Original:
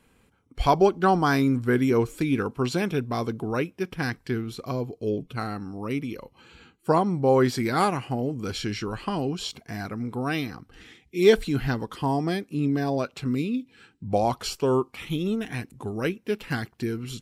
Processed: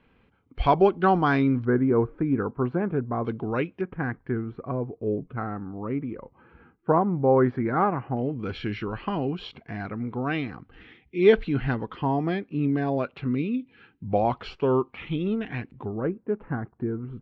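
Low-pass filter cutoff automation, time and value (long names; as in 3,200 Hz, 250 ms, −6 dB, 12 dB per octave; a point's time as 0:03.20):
low-pass filter 24 dB per octave
3,300 Hz
from 0:01.65 1,500 Hz
from 0:03.25 3,200 Hz
from 0:03.81 1,700 Hz
from 0:08.17 3,000 Hz
from 0:15.85 1,300 Hz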